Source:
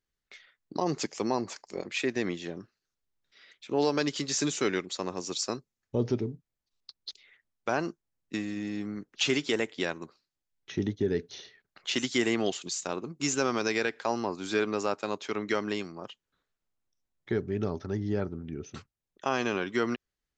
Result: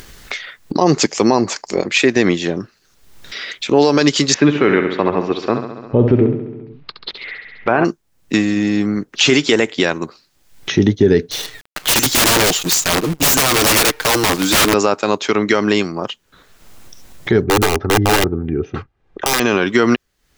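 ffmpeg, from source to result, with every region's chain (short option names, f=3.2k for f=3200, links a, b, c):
-filter_complex "[0:a]asettb=1/sr,asplit=3[a][b][c];[a]atrim=end=4.344[d];[b]atrim=start=4.34:end=7.85,asetpts=PTS-STARTPTS,afade=t=in:d=0.004:c=qsin,afade=t=out:st=3.506:d=0.004:c=qsin,lowpass=f=2.6k:w=0.5412,lowpass=f=2.6k:w=1.3066,aecho=1:1:68|136|204|272|340|408|476:0.335|0.198|0.117|0.0688|0.0406|0.0239|0.0141,atrim=end_sample=154791[e];[c]atrim=start=7.846[f];[d][e]acrossfade=d=0.004:c1=hsin:c2=qsin[g];[g][f]acrossfade=d=0.004:c1=qsin:c2=hsin,asettb=1/sr,asplit=3[h][i][j];[h]atrim=end=11.314[k];[i]atrim=start=11.31:end=14.74,asetpts=PTS-STARTPTS,afade=t=in:d=0.004:c=qsin,afade=t=out:st=3.426:d=0.004:c=qsin,aecho=1:1:6.5:0.7,atrim=end_sample=151263,acrusher=bits=8:dc=4:mix=0:aa=0.000001,aeval=exprs='(mod(18.8*val(0)+1,2)-1)/18.8':c=same[l];[j]atrim=start=14.736[m];[k][l]acrossfade=d=0.004:c1=hsin:c2=qsin[n];[n][m]acrossfade=d=0.004:c1=qsin:c2=hsin,asettb=1/sr,asplit=3[o][p][q];[o]atrim=end=17.444[r];[p]atrim=start=17.44:end=19.4,asetpts=PTS-STARTPTS,afade=t=in:d=0.004:c=qsin,afade=t=out:st=1.956:d=0.004:c=qsin,lowpass=1.8k,aeval=exprs='(mod(18.8*val(0)+1,2)-1)/18.8':c=same,aecho=1:1:2.5:0.37,atrim=end_sample=86436[s];[q]atrim=start=19.396[t];[r][s]acrossfade=d=0.004:c1=hsin:c2=qsin[u];[u][t]acrossfade=d=0.004:c1=qsin:c2=hsin,acompressor=mode=upward:threshold=-35dB:ratio=2.5,alimiter=level_in=19dB:limit=-1dB:release=50:level=0:latency=1,volume=-1dB"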